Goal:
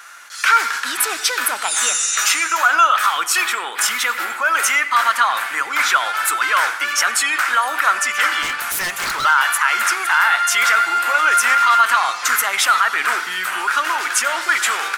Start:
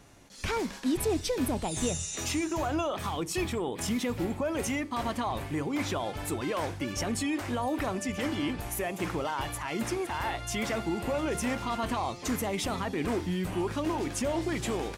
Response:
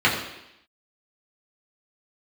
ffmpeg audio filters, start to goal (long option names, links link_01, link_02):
-filter_complex "[0:a]highpass=frequency=1400:width_type=q:width=5.7,highshelf=frequency=8200:gain=6,asettb=1/sr,asplit=3[link_01][link_02][link_03];[link_01]atrim=end=8.424[link_04];[link_02]atrim=start=8.42:end=9.25,asetpts=PTS-STARTPTS,afade=type=in:duration=0.004:curve=qsin,afade=type=out:start_time=0.826:duration=0.004:curve=qsin,aeval=exprs='0.0266*(abs(mod(val(0)/0.0266+3,4)-2)-1)':channel_layout=same[link_05];[link_03]atrim=start=9.246[link_06];[link_04][link_05]acrossfade=duration=0.004:curve1=hsin:curve2=qsin[link_07];[link_07][link_06]acrossfade=duration=0.004:curve1=qsin:curve2=hsin,asplit=2[link_08][link_09];[1:a]atrim=start_sample=2205,adelay=89[link_10];[link_09][link_10]afir=irnorm=-1:irlink=0,volume=-32dB[link_11];[link_08][link_11]amix=inputs=2:normalize=0,alimiter=level_in=17.5dB:limit=-1dB:release=50:level=0:latency=1,volume=-3dB"